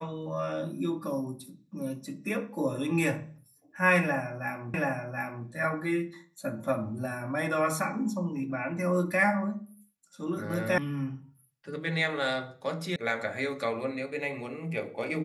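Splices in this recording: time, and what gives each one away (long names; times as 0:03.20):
0:04.74: the same again, the last 0.73 s
0:10.78: cut off before it has died away
0:12.96: cut off before it has died away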